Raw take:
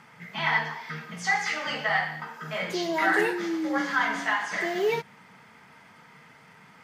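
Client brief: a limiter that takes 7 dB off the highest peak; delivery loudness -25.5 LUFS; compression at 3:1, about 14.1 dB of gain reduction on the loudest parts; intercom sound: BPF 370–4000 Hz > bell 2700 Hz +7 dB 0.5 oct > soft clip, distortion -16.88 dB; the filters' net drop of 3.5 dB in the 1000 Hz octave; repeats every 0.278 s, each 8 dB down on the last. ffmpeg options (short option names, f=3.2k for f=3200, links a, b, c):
-af "equalizer=f=1k:t=o:g=-4.5,acompressor=threshold=-41dB:ratio=3,alimiter=level_in=9dB:limit=-24dB:level=0:latency=1,volume=-9dB,highpass=370,lowpass=4k,equalizer=f=2.7k:t=o:w=0.5:g=7,aecho=1:1:278|556|834|1112|1390:0.398|0.159|0.0637|0.0255|0.0102,asoftclip=threshold=-36.5dB,volume=18dB"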